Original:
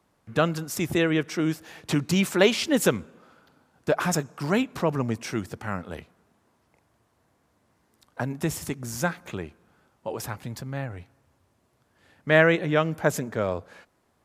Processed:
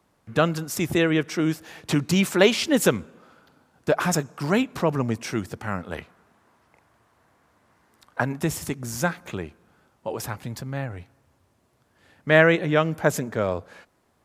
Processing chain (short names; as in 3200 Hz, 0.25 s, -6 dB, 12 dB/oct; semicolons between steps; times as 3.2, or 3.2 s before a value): 5.92–8.39 bell 1400 Hz +7 dB 2.1 oct; gain +2 dB